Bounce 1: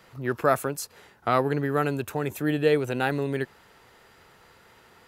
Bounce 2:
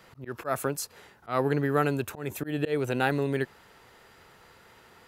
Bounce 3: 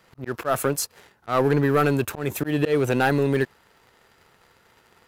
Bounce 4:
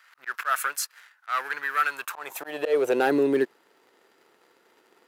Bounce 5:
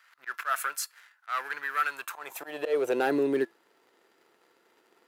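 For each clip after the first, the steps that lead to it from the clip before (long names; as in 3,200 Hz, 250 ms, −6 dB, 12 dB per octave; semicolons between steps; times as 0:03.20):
volume swells 171 ms
leveller curve on the samples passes 2
speech leveller within 4 dB 2 s; high-pass filter sweep 1,500 Hz → 320 Hz, 0:01.85–0:03.16; level −4 dB
tuned comb filter 340 Hz, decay 0.22 s, harmonics all, mix 40%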